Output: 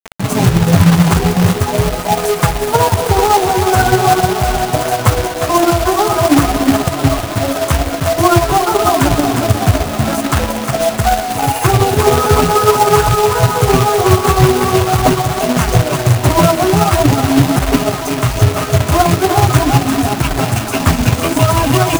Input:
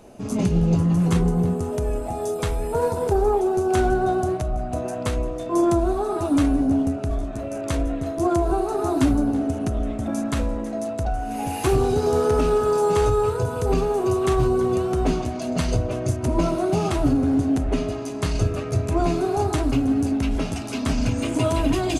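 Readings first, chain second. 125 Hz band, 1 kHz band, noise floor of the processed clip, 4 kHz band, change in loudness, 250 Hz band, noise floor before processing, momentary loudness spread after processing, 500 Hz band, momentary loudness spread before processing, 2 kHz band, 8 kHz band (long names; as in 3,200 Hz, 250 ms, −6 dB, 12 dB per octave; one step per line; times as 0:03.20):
+12.0 dB, +14.5 dB, −21 dBFS, +17.0 dB, +10.0 dB, +6.5 dB, −30 dBFS, 5 LU, +8.0 dB, 7 LU, +16.5 dB, +16.0 dB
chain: high-pass filter 41 Hz 12 dB per octave
three-way crossover with the lows and the highs turned down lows −16 dB, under 520 Hz, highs −15 dB, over 3,100 Hz
reverb reduction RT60 1.1 s
on a send: feedback echo with a high-pass in the loop 356 ms, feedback 67%, high-pass 150 Hz, level −8 dB
on the sum: amplitude tremolo 16 Hz, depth 41%
flanger 0.45 Hz, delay 3.9 ms, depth 9.5 ms, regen +29%
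octave-band graphic EQ 125/250/500/1,000/2,000/4,000/8,000 Hz +11/−3/−8/−4/−8/−12/+3 dB
log-companded quantiser 4 bits
boost into a limiter +31.5 dB
level −1 dB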